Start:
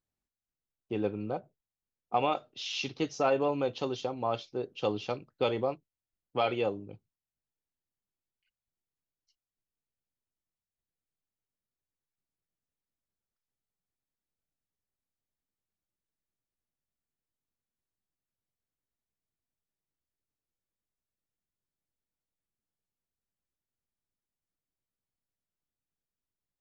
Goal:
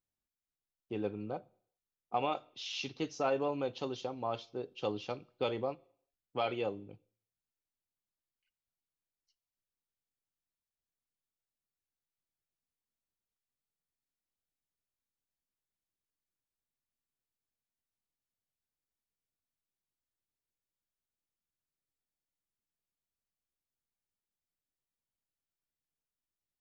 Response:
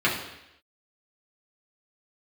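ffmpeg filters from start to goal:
-filter_complex "[0:a]asplit=2[a][b];[1:a]atrim=start_sample=2205,asetrate=57330,aresample=44100,highshelf=f=3.2k:g=8.5[c];[b][c]afir=irnorm=-1:irlink=0,volume=-34dB[d];[a][d]amix=inputs=2:normalize=0,volume=-5dB"

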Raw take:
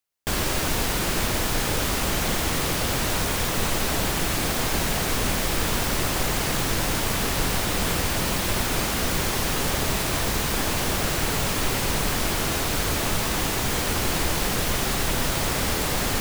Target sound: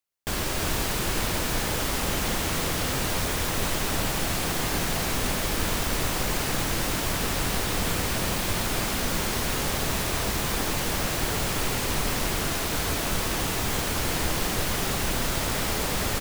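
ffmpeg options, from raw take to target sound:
-af "aecho=1:1:332:0.531,volume=-3.5dB"

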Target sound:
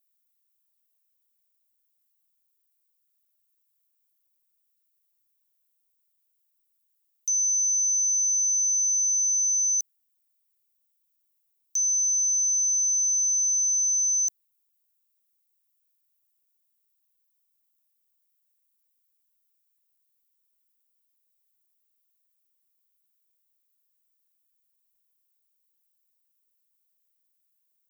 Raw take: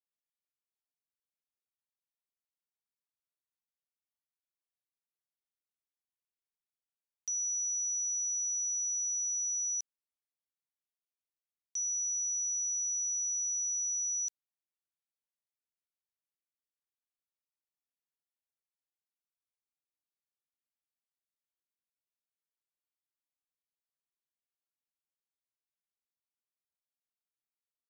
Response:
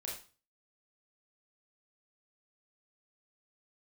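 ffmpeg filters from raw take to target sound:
-af "aemphasis=mode=production:type=riaa,afreqshift=210"

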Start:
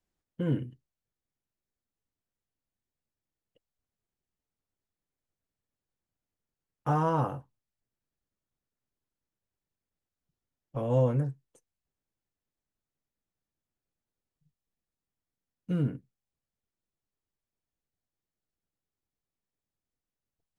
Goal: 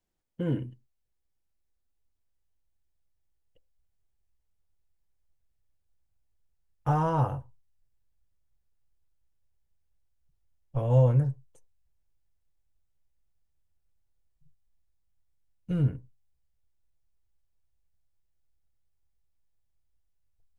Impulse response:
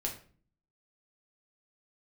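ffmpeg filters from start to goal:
-filter_complex "[0:a]asubboost=boost=9.5:cutoff=74,asplit=2[a][b];[b]lowpass=f=970:t=q:w=4.9[c];[1:a]atrim=start_sample=2205,afade=t=out:st=0.16:d=0.01,atrim=end_sample=7497[d];[c][d]afir=irnorm=-1:irlink=0,volume=-20dB[e];[a][e]amix=inputs=2:normalize=0"

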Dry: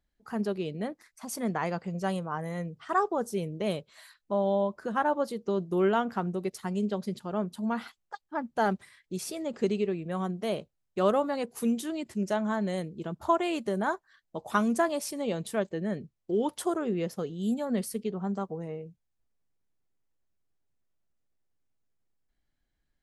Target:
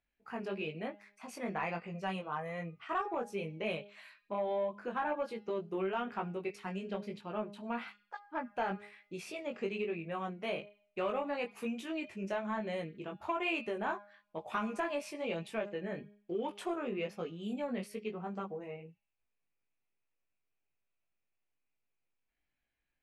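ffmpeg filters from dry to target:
-filter_complex "[0:a]bandreject=f=204.9:t=h:w=4,bandreject=f=409.8:t=h:w=4,bandreject=f=614.7:t=h:w=4,bandreject=f=819.6:t=h:w=4,bandreject=f=1.0245k:t=h:w=4,bandreject=f=1.2294k:t=h:w=4,bandreject=f=1.4343k:t=h:w=4,bandreject=f=1.6392k:t=h:w=4,bandreject=f=1.8441k:t=h:w=4,bandreject=f=2.049k:t=h:w=4,bandreject=f=2.2539k:t=h:w=4,bandreject=f=2.4588k:t=h:w=4,bandreject=f=2.6637k:t=h:w=4,bandreject=f=2.8686k:t=h:w=4,bandreject=f=3.0735k:t=h:w=4,bandreject=f=3.2784k:t=h:w=4,bandreject=f=3.4833k:t=h:w=4,bandreject=f=3.6882k:t=h:w=4,bandreject=f=3.8931k:t=h:w=4,bandreject=f=4.098k:t=h:w=4,bandreject=f=4.3029k:t=h:w=4,bandreject=f=4.5078k:t=h:w=4,bandreject=f=4.7127k:t=h:w=4,bandreject=f=4.9176k:t=h:w=4,bandreject=f=5.1225k:t=h:w=4,bandreject=f=5.3274k:t=h:w=4,bandreject=f=5.5323k:t=h:w=4,bandreject=f=5.7372k:t=h:w=4,bandreject=f=5.9421k:t=h:w=4,flanger=delay=18:depth=3:speed=1.1,acompressor=threshold=-28dB:ratio=6,asplit=2[a][b];[b]highpass=f=720:p=1,volume=9dB,asoftclip=type=tanh:threshold=-20dB[c];[a][c]amix=inputs=2:normalize=0,lowpass=f=1.4k:p=1,volume=-6dB,equalizer=f=2.5k:w=3.1:g=15,volume=-2.5dB"

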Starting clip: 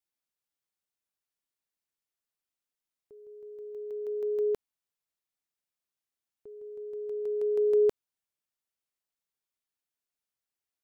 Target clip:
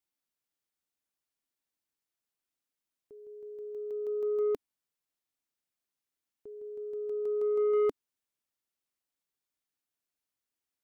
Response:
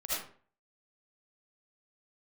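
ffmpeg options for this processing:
-af "equalizer=f=280:w=2.6:g=5,asoftclip=type=tanh:threshold=-23dB"

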